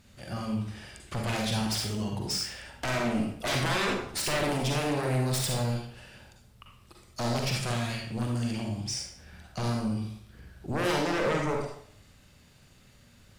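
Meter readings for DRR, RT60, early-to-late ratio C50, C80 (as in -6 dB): 0.0 dB, 0.60 s, 2.0 dB, 6.0 dB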